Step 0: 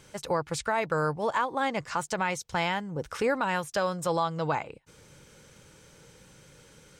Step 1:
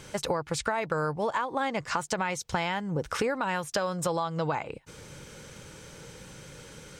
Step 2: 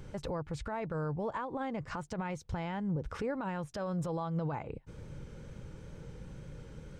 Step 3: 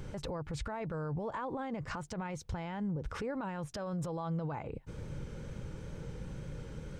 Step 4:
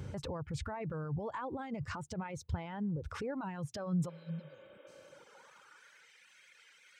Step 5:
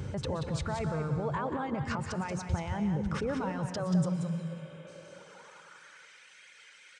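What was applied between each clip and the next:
high-shelf EQ 10,000 Hz −3.5 dB; downward compressor, threshold −34 dBFS, peak gain reduction 11.5 dB; level +8 dB
spectral tilt −3.5 dB per octave; brickwall limiter −19 dBFS, peak gain reduction 8.5 dB; tape wow and flutter 25 cents; level −8 dB
brickwall limiter −34 dBFS, peak gain reduction 7 dB; level +4 dB
reverb reduction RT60 1.6 s; high-pass filter sweep 84 Hz → 2,100 Hz, 0:03.45–0:06.10; healed spectral selection 0:04.12–0:05.07, 220–3,800 Hz after; level −1 dB
single-tap delay 182 ms −7 dB; on a send at −10 dB: convolution reverb RT60 2.0 s, pre-delay 108 ms; on the sum: downsampling to 22,050 Hz; level +5.5 dB

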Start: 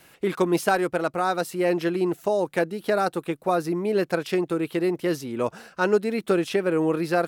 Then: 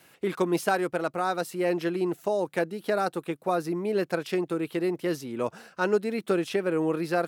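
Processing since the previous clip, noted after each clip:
high-pass filter 91 Hz
level −3.5 dB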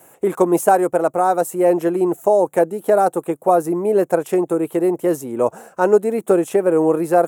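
drawn EQ curve 200 Hz 0 dB, 510 Hz +7 dB, 820 Hz +8 dB, 1,400 Hz −2 dB, 4,800 Hz −14 dB, 7,100 Hz +7 dB
level +5.5 dB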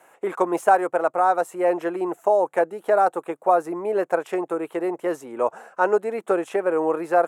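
resonant band-pass 1,500 Hz, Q 0.71
level +1 dB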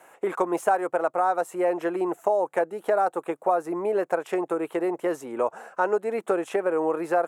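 downward compressor 2 to 1, threshold −25 dBFS, peak gain reduction 8 dB
level +1.5 dB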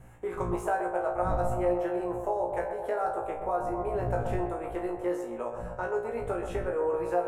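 wind on the microphone 110 Hz −32 dBFS
tuned comb filter 59 Hz, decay 0.31 s, harmonics all, mix 100%
feedback echo with a band-pass in the loop 127 ms, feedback 82%, band-pass 690 Hz, level −6 dB

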